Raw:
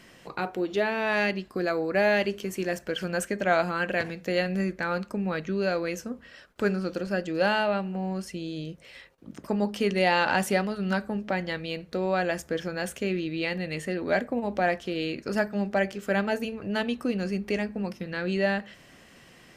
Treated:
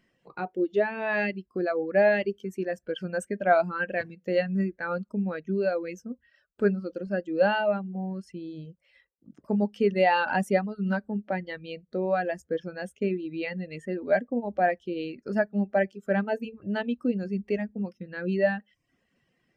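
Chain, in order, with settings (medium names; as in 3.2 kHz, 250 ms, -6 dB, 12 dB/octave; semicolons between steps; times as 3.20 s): reverb removal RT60 0.6 s; 12.84–13.26 s: transient shaper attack +2 dB, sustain -4 dB; spectral contrast expander 1.5:1; trim +1 dB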